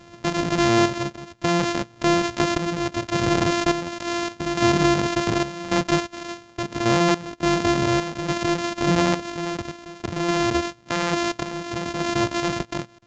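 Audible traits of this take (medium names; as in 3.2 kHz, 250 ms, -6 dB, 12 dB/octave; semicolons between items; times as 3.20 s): a buzz of ramps at a fixed pitch in blocks of 128 samples; random-step tremolo, depth 90%; µ-law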